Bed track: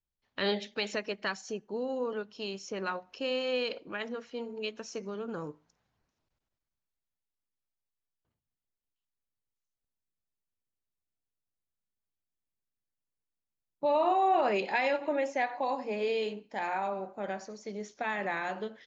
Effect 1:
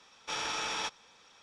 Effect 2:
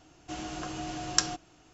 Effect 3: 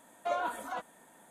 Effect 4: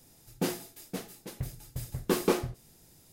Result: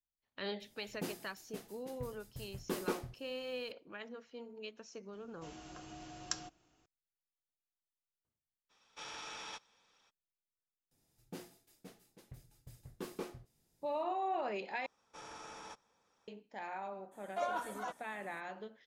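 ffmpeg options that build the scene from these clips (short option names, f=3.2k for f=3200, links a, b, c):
-filter_complex "[4:a]asplit=2[a][b];[1:a]asplit=2[c][d];[0:a]volume=-10.5dB[e];[b]highshelf=f=10k:g=-5[f];[d]equalizer=f=3.3k:t=o:w=1.9:g=-13[g];[e]asplit=2[h][i];[h]atrim=end=14.864[j];[g]atrim=end=1.42,asetpts=PTS-STARTPTS,volume=-10dB[k];[i]atrim=start=16.276[l];[a]atrim=end=3.12,asetpts=PTS-STARTPTS,volume=-11dB,afade=t=in:d=0.004:c=hsin,afade=t=out:st=3.116:d=0.004:c=hsin,adelay=600[m];[2:a]atrim=end=1.73,asetpts=PTS-STARTPTS,volume=-13.5dB,afade=t=in:d=0.004:c=hsin,afade=t=out:st=1.726:d=0.004:c=hsin,adelay=226233S[n];[c]atrim=end=1.42,asetpts=PTS-STARTPTS,volume=-12dB,afade=t=in:d=0.02,afade=t=out:st=1.4:d=0.02,adelay=8690[o];[f]atrim=end=3.12,asetpts=PTS-STARTPTS,volume=-17dB,afade=t=in:d=0.004:c=hsin,afade=t=out:st=3.116:d=0.004:c=hsin,adelay=10910[p];[3:a]atrim=end=1.3,asetpts=PTS-STARTPTS,volume=-4dB,afade=t=in:d=0.02,afade=t=out:st=1.28:d=0.02,adelay=17110[q];[j][k]acrossfade=d=0.004:c1=hsin:c2=hsin[r];[r][l]acrossfade=d=0.004:c1=hsin:c2=hsin[s];[s][m][n][o][p][q]amix=inputs=6:normalize=0"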